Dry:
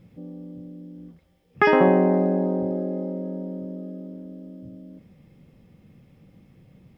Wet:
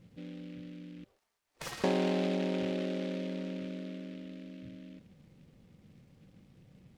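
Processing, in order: 1.04–1.84 spectral gate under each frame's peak -20 dB weak; compressor 2:1, threshold -24 dBFS, peak gain reduction 6 dB; noise-modulated delay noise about 2400 Hz, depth 0.075 ms; gain -6 dB

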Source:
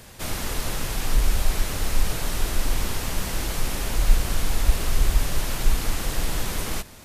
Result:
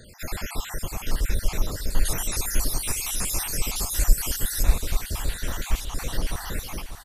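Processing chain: random spectral dropouts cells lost 63%; 2.05–4.63 bell 10000 Hz +12 dB 1.8 oct; feedback echo 0.593 s, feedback 47%, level -11 dB

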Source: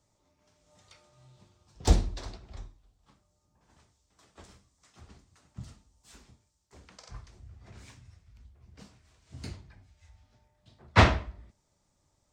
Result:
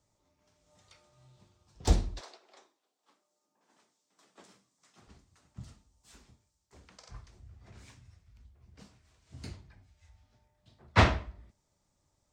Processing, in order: 2.19–5.06 HPF 440 Hz -> 130 Hz 24 dB/oct; gain -3 dB

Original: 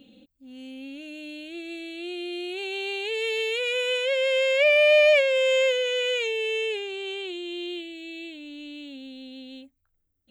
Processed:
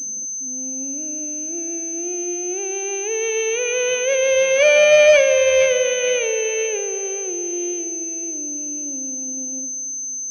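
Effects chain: echo with dull and thin repeats by turns 0.229 s, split 1500 Hz, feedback 65%, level -10 dB; low-pass opened by the level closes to 900 Hz, open at -16 dBFS; pulse-width modulation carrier 6200 Hz; gain +6 dB

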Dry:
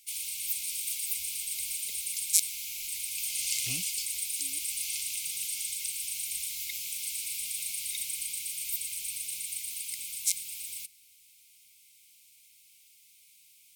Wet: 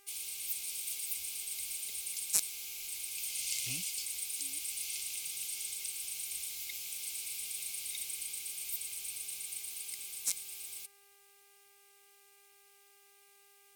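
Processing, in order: in parallel at -5 dB: one-sided clip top -16 dBFS; on the sum: buzz 400 Hz, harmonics 7, -60 dBFS -2 dB/oct; gain -9 dB

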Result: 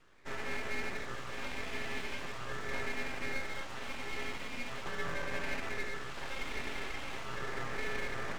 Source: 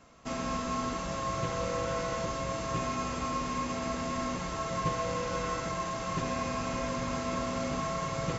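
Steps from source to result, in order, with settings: three-band isolator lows -16 dB, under 480 Hz, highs -15 dB, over 2400 Hz; LFO notch sine 0.41 Hz 480–2900 Hz; full-wave rectifier; gain +2.5 dB

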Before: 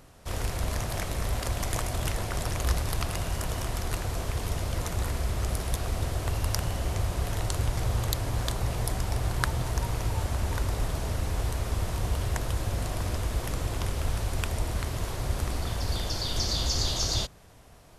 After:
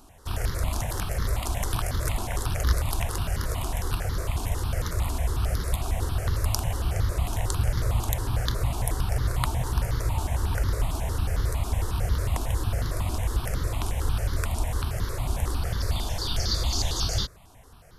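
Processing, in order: step phaser 11 Hz 520–2500 Hz; gain +4 dB

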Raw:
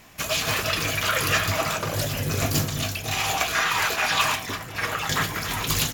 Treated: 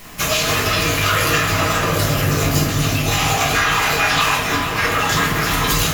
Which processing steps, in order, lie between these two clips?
shoebox room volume 51 m³, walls mixed, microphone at 1.3 m; compressor 3:1, threshold -21 dBFS, peak gain reduction 8 dB; on a send: dark delay 0.456 s, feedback 65%, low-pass 3700 Hz, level -9 dB; on the sum: added noise white -51 dBFS; gain +5 dB

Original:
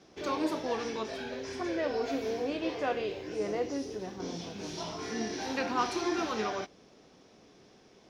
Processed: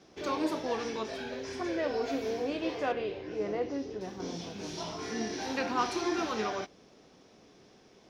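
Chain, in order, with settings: 2.92–4.01 air absorption 150 m

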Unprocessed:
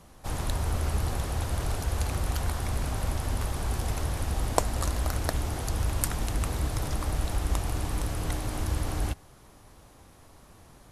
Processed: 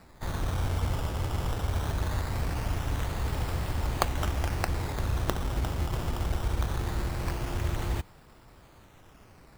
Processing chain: wide varispeed 1.14×; decimation with a swept rate 14×, swing 100% 0.21 Hz; gain -1 dB

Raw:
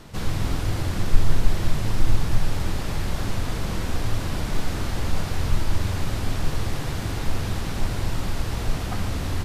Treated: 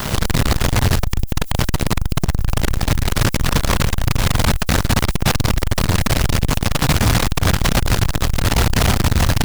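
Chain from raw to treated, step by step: bell 330 Hz -14 dB 0.25 oct; de-hum 45.99 Hz, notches 19; fuzz box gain 39 dB, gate -46 dBFS; added noise violet -38 dBFS; core saturation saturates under 78 Hz; gain +3 dB

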